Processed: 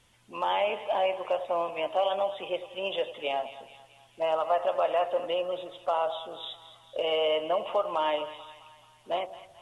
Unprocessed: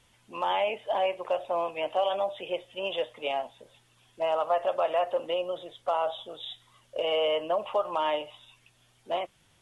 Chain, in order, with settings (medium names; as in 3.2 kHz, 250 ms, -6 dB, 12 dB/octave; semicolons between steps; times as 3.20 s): two-band feedback delay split 820 Hz, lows 93 ms, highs 217 ms, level -13.5 dB